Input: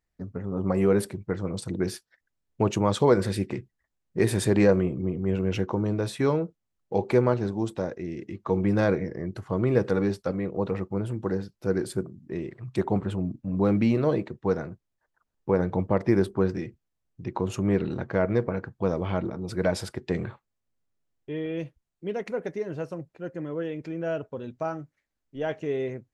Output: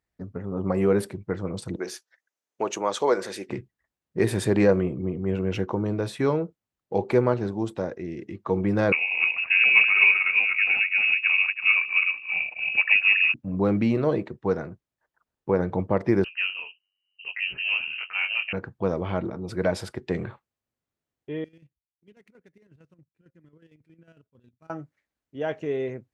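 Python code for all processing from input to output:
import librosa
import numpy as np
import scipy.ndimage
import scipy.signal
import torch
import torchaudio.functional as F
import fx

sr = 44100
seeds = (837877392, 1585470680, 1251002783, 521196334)

y = fx.chain(x, sr, fx.highpass(hz=440.0, slope=12),
    fx.peak_eq(hz=6300.0, db=8.5, octaves=0.33), at=(1.76, 3.49))
y = fx.chain(y, sr, fx.reverse_delay_fb(ms=164, feedback_pct=45, wet_db=-2.5),
    fx.low_shelf(hz=140.0, db=10.5),
    fx.freq_invert(carrier_hz=2700), at=(8.92, 13.34))
y = fx.chain(y, sr, fx.freq_invert(carrier_hz=2900),
    fx.detune_double(cents=57), at=(16.24, 18.53))
y = fx.chain(y, sr, fx.median_filter(points=9),
    fx.tone_stack(knobs='6-0-2'),
    fx.chopper(hz=11.0, depth_pct=65, duty_pct=50), at=(21.44, 24.7))
y = scipy.signal.sosfilt(scipy.signal.butter(2, 46.0, 'highpass', fs=sr, output='sos'), y)
y = fx.bass_treble(y, sr, bass_db=-2, treble_db=-4)
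y = y * 10.0 ** (1.0 / 20.0)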